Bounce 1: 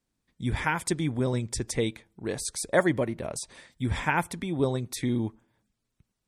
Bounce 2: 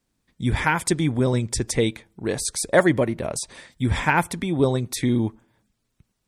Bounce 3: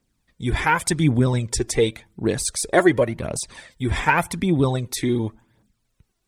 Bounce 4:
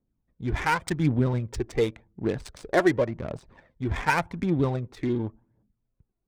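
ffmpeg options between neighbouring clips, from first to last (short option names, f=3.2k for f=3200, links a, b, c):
-af "acontrast=63"
-af "aphaser=in_gain=1:out_gain=1:delay=3:decay=0.51:speed=0.89:type=triangular"
-af "adynamicsmooth=sensitivity=2:basefreq=830,volume=-5dB"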